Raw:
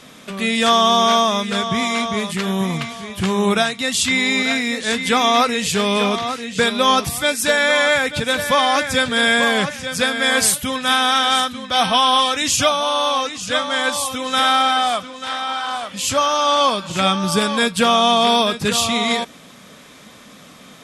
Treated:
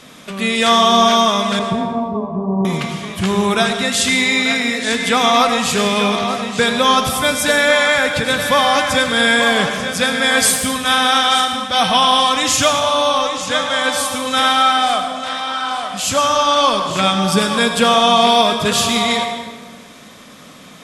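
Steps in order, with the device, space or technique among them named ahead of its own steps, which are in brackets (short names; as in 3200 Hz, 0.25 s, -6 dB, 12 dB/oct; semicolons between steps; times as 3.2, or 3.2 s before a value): 1.59–2.65 steep low-pass 1100 Hz 96 dB/oct; saturated reverb return (on a send at -4.5 dB: reverb RT60 1.4 s, pre-delay 75 ms + soft clip -9.5 dBFS, distortion -18 dB); on the sum: gain +1.5 dB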